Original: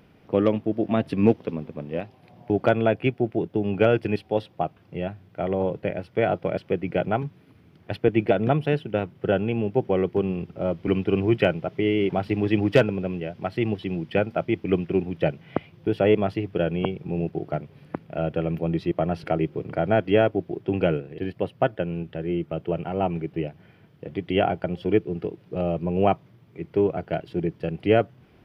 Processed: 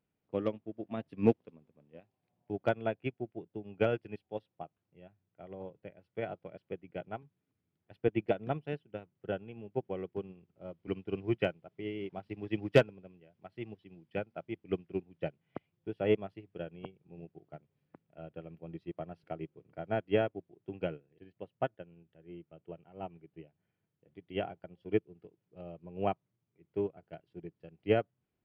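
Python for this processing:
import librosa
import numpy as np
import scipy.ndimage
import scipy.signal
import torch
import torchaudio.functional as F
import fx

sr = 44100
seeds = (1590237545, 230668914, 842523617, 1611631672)

y = fx.upward_expand(x, sr, threshold_db=-30.0, expansion=2.5)
y = F.gain(torch.from_numpy(y), -4.0).numpy()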